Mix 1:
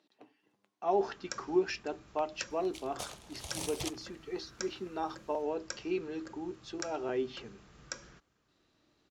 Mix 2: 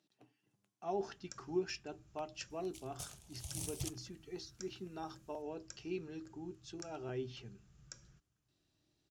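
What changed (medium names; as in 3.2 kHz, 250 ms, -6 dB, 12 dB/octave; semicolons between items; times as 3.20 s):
speech +3.5 dB; first sound -5.0 dB; master: add graphic EQ 125/250/500/1000/2000/4000 Hz +6/-9/-11/-11/-9/-8 dB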